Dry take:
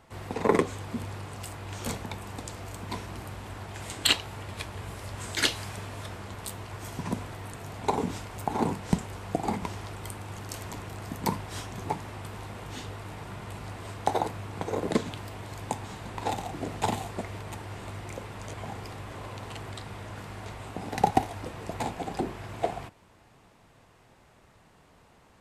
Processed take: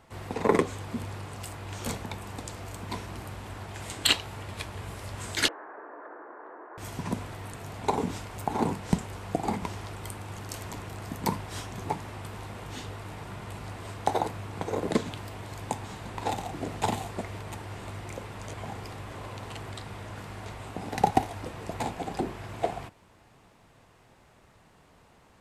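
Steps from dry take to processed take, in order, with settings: 5.48–6.78 Chebyshev band-pass 300–1700 Hz, order 4

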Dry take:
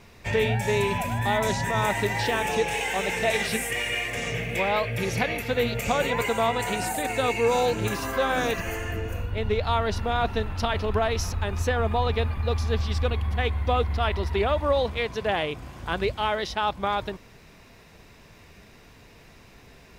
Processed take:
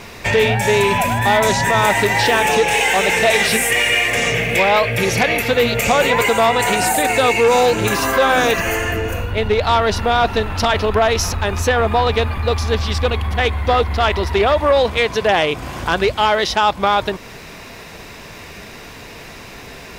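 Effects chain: in parallel at +3 dB: compressor, threshold -35 dBFS, peak gain reduction 15.5 dB; on the sum: sine folder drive 4 dB, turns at -8.5 dBFS; low shelf 220 Hz -7.5 dB; gain +2 dB

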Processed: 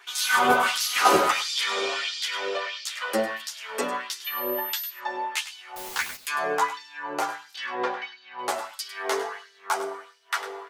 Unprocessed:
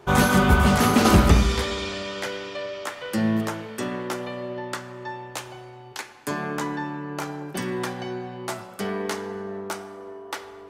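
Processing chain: bell 130 Hz +2.5 dB 0.84 oct; notch 600 Hz, Q 12; in parallel at +1 dB: compressor, threshold -28 dBFS, peak gain reduction 17 dB; on the sum: LFO high-pass sine 1.5 Hz 480–4700 Hz; 5.76–6.16 requantised 6-bit, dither triangular; chorus voices 4, 0.23 Hz, delay 10 ms, depth 2.9 ms; 4.24–4.89 whine 13000 Hz -32 dBFS; 7.56–8.39 air absorption 190 m; echo 0.102 s -13 dB

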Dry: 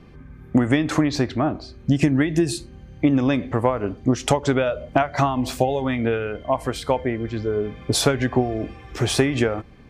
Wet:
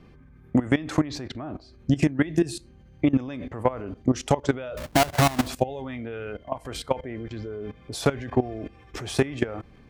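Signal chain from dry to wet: 4.77–5.48 half-waves squared off; level quantiser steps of 17 dB

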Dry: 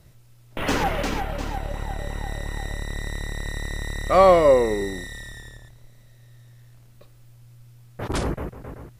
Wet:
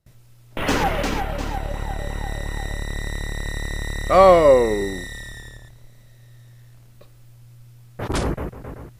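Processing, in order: gate with hold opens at -45 dBFS; gain +2.5 dB

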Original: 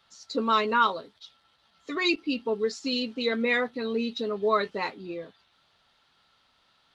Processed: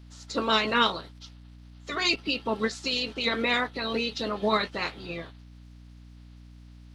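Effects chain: spectral limiter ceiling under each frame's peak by 18 dB; hum 60 Hz, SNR 18 dB

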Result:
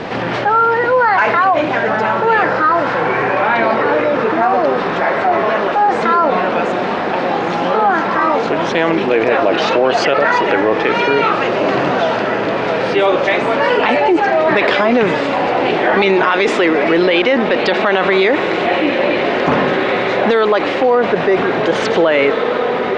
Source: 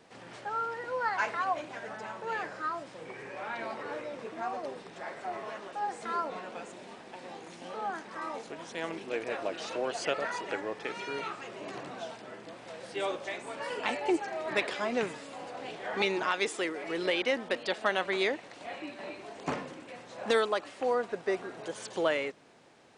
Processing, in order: air absorption 230 m; diffused feedback echo 1.866 s, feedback 57%, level -13 dB; maximiser +25.5 dB; fast leveller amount 50%; gain -4.5 dB

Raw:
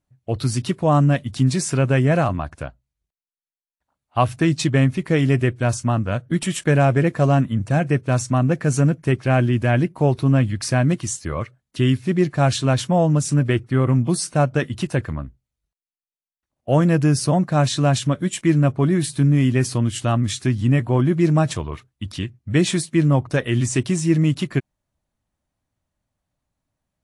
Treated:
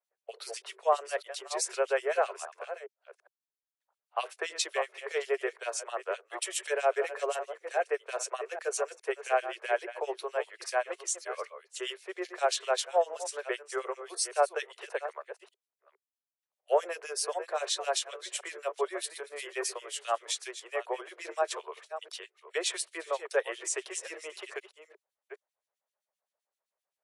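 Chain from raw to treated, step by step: reverse delay 0.409 s, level -11.5 dB; steep high-pass 400 Hz 96 dB/oct; harmonic tremolo 7.7 Hz, depth 100%, crossover 2100 Hz; gain -3 dB

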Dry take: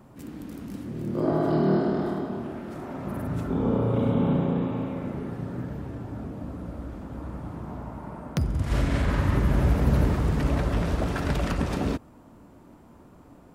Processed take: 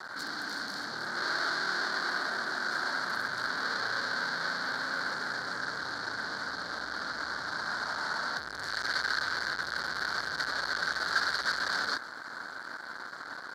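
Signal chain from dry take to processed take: fuzz box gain 49 dB, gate -51 dBFS; double band-pass 2600 Hz, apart 1.5 oct; gain -2 dB

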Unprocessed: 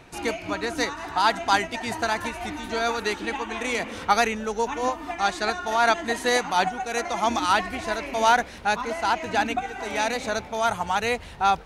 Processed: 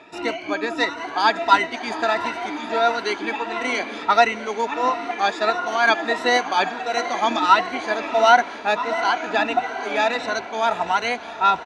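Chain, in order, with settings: moving spectral ripple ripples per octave 2, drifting +1.5 Hz, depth 13 dB; BPF 220–4500 Hz; comb 3 ms, depth 32%; diffused feedback echo 0.761 s, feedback 56%, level -14 dB; gain +1.5 dB

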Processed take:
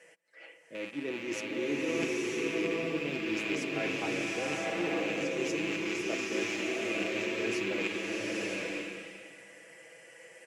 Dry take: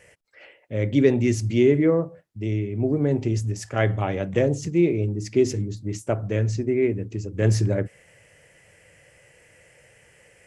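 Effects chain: rattling part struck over -30 dBFS, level -18 dBFS; HPF 220 Hz 24 dB/oct; high shelf 7900 Hz -4.5 dB; comb 6.1 ms, depth 61%; reverse; compressor 6:1, threshold -31 dBFS, peak gain reduction 18.5 dB; reverse; added harmonics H 3 -17 dB, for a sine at -19.5 dBFS; bloom reverb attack 0.94 s, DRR -4.5 dB

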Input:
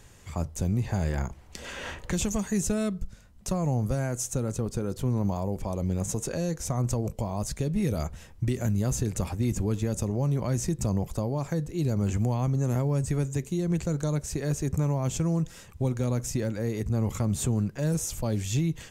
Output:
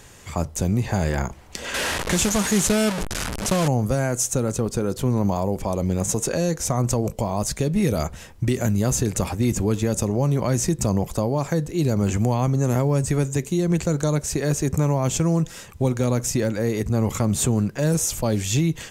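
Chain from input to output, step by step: 1.74–3.68 delta modulation 64 kbps, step -27 dBFS; low shelf 160 Hz -7.5 dB; gain +9 dB

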